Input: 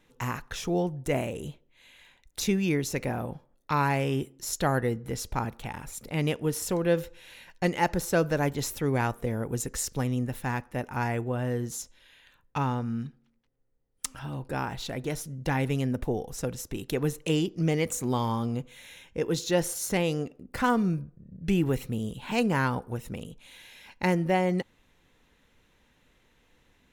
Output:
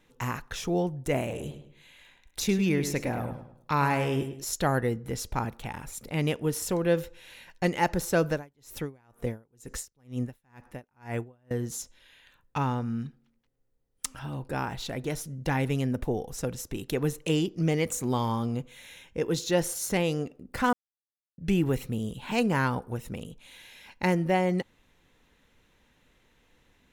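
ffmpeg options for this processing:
ffmpeg -i in.wav -filter_complex "[0:a]asettb=1/sr,asplit=3[link_01][link_02][link_03];[link_01]atrim=end=1.194[link_04];[link_02]atrim=start=1.19:end=4.44,asetpts=PTS-STARTPTS,afade=type=in:duration=0.004:curve=qsin,afade=type=out:start_time=3.246:duration=0.004:curve=qsin,asplit=2[link_05][link_06];[link_06]adelay=104,lowpass=frequency=4100:poles=1,volume=-9dB,asplit=2[link_07][link_08];[link_08]adelay=104,lowpass=frequency=4100:poles=1,volume=0.37,asplit=2[link_09][link_10];[link_10]adelay=104,lowpass=frequency=4100:poles=1,volume=0.37,asplit=2[link_11][link_12];[link_12]adelay=104,lowpass=frequency=4100:poles=1,volume=0.37[link_13];[link_05][link_07][link_09][link_11][link_13]amix=inputs=5:normalize=0,atrim=end_sample=143325[link_14];[link_03]atrim=start=4.436[link_15];[link_04][link_14]acrossfade=duration=0.004:curve1=hsin:curve2=qsin[link_16];[link_16][link_15]acrossfade=duration=0.004:curve1=qsin:curve2=hsin,asettb=1/sr,asplit=3[link_17][link_18][link_19];[link_17]atrim=end=8.314[link_20];[link_18]atrim=start=8.31:end=11.51,asetpts=PTS-STARTPTS,afade=type=in:duration=0.004:curve=qsin,afade=type=out:start_time=3.196:duration=0.004:curve=qsin,aeval=exprs='val(0)*pow(10,-37*(0.5-0.5*cos(2*PI*2.1*n/s))/20)':channel_layout=same[link_21];[link_19]atrim=start=11.506[link_22];[link_20][link_21]acrossfade=duration=0.004:curve1=hsin:curve2=qsin[link_23];[link_23][link_22]acrossfade=duration=0.004:curve1=qsin:curve2=hsin,asplit=3[link_24][link_25][link_26];[link_24]atrim=end=20.73,asetpts=PTS-STARTPTS,afade=type=out:start_time=20.726:duration=0.004:curve=hsin[link_27];[link_25]atrim=start=20.73:end=21.38,asetpts=PTS-STARTPTS,volume=0[link_28];[link_26]atrim=start=21.38,asetpts=PTS-STARTPTS,afade=type=in:duration=0.004:curve=hsin[link_29];[link_27][link_28][link_29]concat=n=3:v=0:a=1" out.wav

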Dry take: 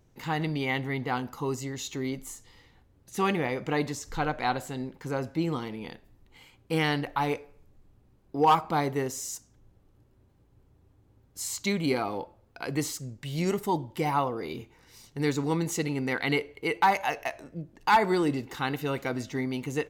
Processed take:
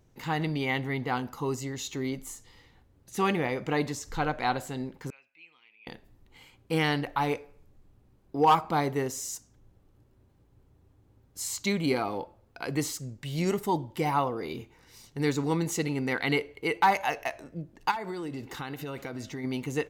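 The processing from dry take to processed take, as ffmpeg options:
ffmpeg -i in.wav -filter_complex "[0:a]asettb=1/sr,asplit=3[link_01][link_02][link_03];[link_01]atrim=end=5.104[link_04];[link_02]atrim=start=5.1:end=5.87,asetpts=PTS-STARTPTS,afade=type=in:duration=0.004:curve=qsin,afade=type=out:start_time=0.766:duration=0.004:curve=qsin,bandpass=frequency=2500:width_type=q:width=15[link_05];[link_03]atrim=start=5.866[link_06];[link_04][link_05]acrossfade=duration=0.004:curve1=hsin:curve2=qsin[link_07];[link_07][link_06]acrossfade=duration=0.004:curve1=qsin:curve2=hsin,asplit=3[link_08][link_09][link_10];[link_08]afade=type=out:start_time=17.9:duration=0.02[link_11];[link_09]acompressor=threshold=-32dB:ratio=8:attack=3.2:release=140:knee=1:detection=peak,afade=type=in:start_time=17.9:duration=0.02,afade=type=out:start_time=19.43:duration=0.02[link_12];[link_10]afade=type=in:start_time=19.43:duration=0.02[link_13];[link_11][link_12][link_13]amix=inputs=3:normalize=0" out.wav

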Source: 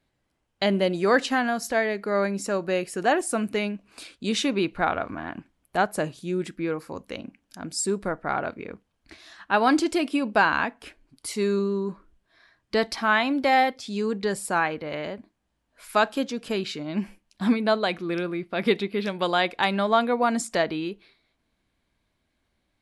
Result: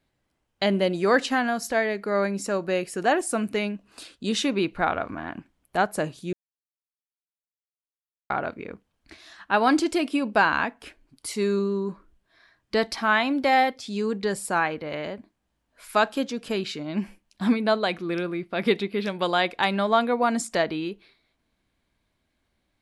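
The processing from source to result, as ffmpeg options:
ffmpeg -i in.wav -filter_complex "[0:a]asettb=1/sr,asplit=3[link_01][link_02][link_03];[link_01]atrim=end=3.754[link_04];[link_02]atrim=start=3.75:end=4.42,asetpts=PTS-STARTPTS,afade=type=in:duration=0.004:curve=qsin,afade=type=out:start_time=0.666:duration=0.004:curve=qsin,bandreject=frequency=2300:width=7.3[link_05];[link_03]atrim=start=4.416[link_06];[link_04][link_05]acrossfade=duration=0.004:curve1=hsin:curve2=qsin[link_07];[link_07][link_06]acrossfade=duration=0.004:curve1=qsin:curve2=hsin,asplit=3[link_08][link_09][link_10];[link_08]atrim=end=6.33,asetpts=PTS-STARTPTS,afade=type=out:start_time=6.326:duration=0.004:curve=hsin[link_11];[link_09]atrim=start=6.33:end=8.3,asetpts=PTS-STARTPTS,volume=0[link_12];[link_10]atrim=start=8.3,asetpts=PTS-STARTPTS,afade=type=in:duration=0.004:curve=hsin[link_13];[link_11][link_12][link_13]concat=n=3:v=0:a=1" out.wav

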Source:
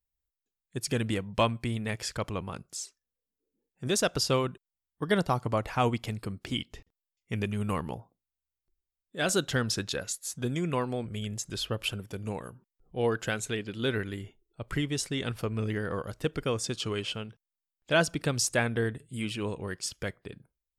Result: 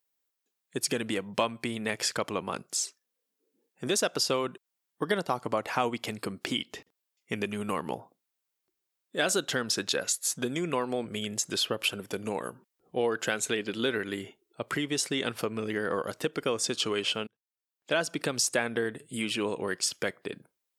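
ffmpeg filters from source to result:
ffmpeg -i in.wav -filter_complex "[0:a]asplit=2[link_01][link_02];[link_01]atrim=end=17.27,asetpts=PTS-STARTPTS,afade=type=out:start_time=17.266:duration=0.004:curve=hsin[link_03];[link_02]atrim=start=17.27,asetpts=PTS-STARTPTS,afade=type=in:duration=1.11[link_04];[link_03][link_04]concat=n=2:v=0:a=1,acompressor=threshold=-33dB:ratio=4,highpass=260,volume=8.5dB" out.wav

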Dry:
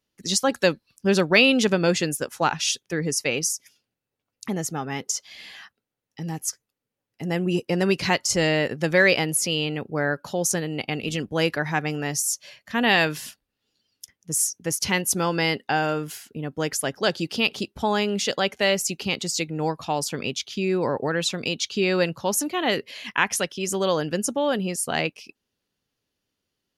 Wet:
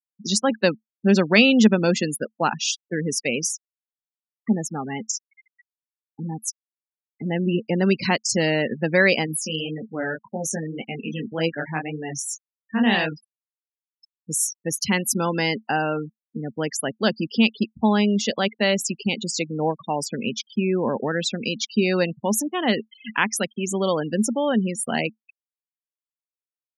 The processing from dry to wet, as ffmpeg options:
ffmpeg -i in.wav -filter_complex "[0:a]asettb=1/sr,asplit=3[link_01][link_02][link_03];[link_01]atrim=end=9.264[link_04];[link_02]atrim=start=9.26:end=13.12,asetpts=PTS-STARTPTS,afade=type=in:duration=0.004:curve=qsin,afade=type=out:start_time=3.856:duration=0.004:curve=qsin,flanger=delay=18:depth=7.6:speed=1.8[link_05];[link_03]atrim=start=13.116[link_06];[link_04][link_05]acrossfade=duration=0.004:curve1=hsin:curve2=qsin[link_07];[link_07][link_06]acrossfade=duration=0.004:curve1=qsin:curve2=hsin,asplit=3[link_08][link_09][link_10];[link_08]afade=type=out:start_time=19.28:duration=0.02[link_11];[link_09]equalizer=frequency=600:width_type=o:width=0.77:gain=5,afade=type=in:start_time=19.28:duration=0.02,afade=type=out:start_time=19.79:duration=0.02[link_12];[link_10]afade=type=in:start_time=19.79:duration=0.02[link_13];[link_11][link_12][link_13]amix=inputs=3:normalize=0,afftfilt=real='re*gte(hypot(re,im),0.0501)':imag='im*gte(hypot(re,im),0.0501)':win_size=1024:overlap=0.75,highpass=120,equalizer=frequency=220:width_type=o:width=0.28:gain=13" out.wav

